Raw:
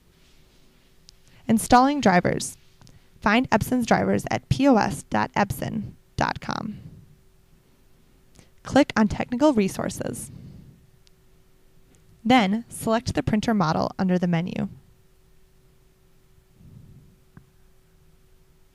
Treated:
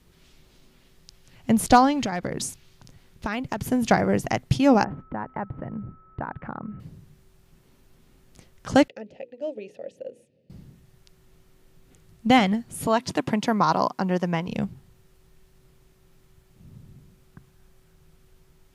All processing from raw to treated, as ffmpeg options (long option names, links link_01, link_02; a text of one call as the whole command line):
ffmpeg -i in.wav -filter_complex "[0:a]asettb=1/sr,asplit=3[link_01][link_02][link_03];[link_01]atrim=end=2.014[link_04];[link_02]atrim=start=2.01:end=3.71,asetpts=PTS-STARTPTS,afade=type=in:duration=0.004:curve=qsin,afade=type=out:start_time=1.696:duration=0.004:curve=qsin,asoftclip=type=hard:threshold=-8dB,acompressor=threshold=-24dB:ratio=6:attack=3.2:release=140:knee=1:detection=peak[link_05];[link_03]atrim=start=3.706[link_06];[link_04][link_05]acrossfade=duration=0.004:curve1=hsin:curve2=qsin[link_07];[link_07][link_06]acrossfade=duration=0.004:curve1=qsin:curve2=hsin,asettb=1/sr,asplit=3[link_08][link_09][link_10];[link_08]atrim=end=4.844[link_11];[link_09]atrim=start=4.84:end=6.8,asetpts=PTS-STARTPTS,afade=type=in:duration=0.004:curve=qsin,afade=type=out:start_time=1.956:duration=0.004:curve=qsin,lowpass=frequency=1700:width=0.5412,lowpass=frequency=1700:width=1.3066,acompressor=threshold=-33dB:ratio=2:attack=3.2:release=140:knee=1:detection=peak,aeval=exprs='val(0)+0.00224*sin(2*PI*1300*n/s)':channel_layout=same[link_12];[link_10]atrim=start=6.796[link_13];[link_11][link_12]acrossfade=duration=0.004:curve1=hsin:curve2=qsin[link_14];[link_14][link_13]acrossfade=duration=0.004:curve1=qsin:curve2=hsin,asettb=1/sr,asplit=3[link_15][link_16][link_17];[link_15]atrim=end=8.884[link_18];[link_16]atrim=start=8.88:end=10.5,asetpts=PTS-STARTPTS,afade=type=in:duration=0.004:curve=qsin,afade=type=out:start_time=1.616:duration=0.004:curve=qsin,asplit=3[link_19][link_20][link_21];[link_19]bandpass=frequency=530:width_type=q:width=8,volume=0dB[link_22];[link_20]bandpass=frequency=1840:width_type=q:width=8,volume=-6dB[link_23];[link_21]bandpass=frequency=2480:width_type=q:width=8,volume=-9dB[link_24];[link_22][link_23][link_24]amix=inputs=3:normalize=0,equalizer=frequency=1700:width_type=o:width=0.72:gain=-13,bandreject=frequency=60:width_type=h:width=6,bandreject=frequency=120:width_type=h:width=6,bandreject=frequency=180:width_type=h:width=6,bandreject=frequency=240:width_type=h:width=6,bandreject=frequency=300:width_type=h:width=6,bandreject=frequency=360:width_type=h:width=6,bandreject=frequency=420:width_type=h:width=6,bandreject=frequency=480:width_type=h:width=6[link_25];[link_17]atrim=start=10.496[link_26];[link_18][link_25]acrossfade=duration=0.004:curve1=hsin:curve2=qsin[link_27];[link_27][link_26]acrossfade=duration=0.004:curve1=qsin:curve2=hsin,asettb=1/sr,asplit=3[link_28][link_29][link_30];[link_28]atrim=end=12.874[link_31];[link_29]atrim=start=12.87:end=14.48,asetpts=PTS-STARTPTS,afade=type=in:duration=0.004:curve=qsin,afade=type=out:start_time=1.606:duration=0.004:curve=qsin,highpass=200,equalizer=frequency=1000:width=6.1:gain=10[link_32];[link_30]atrim=start=14.476[link_33];[link_31][link_32]acrossfade=duration=0.004:curve1=hsin:curve2=qsin[link_34];[link_34][link_33]acrossfade=duration=0.004:curve1=qsin:curve2=hsin" out.wav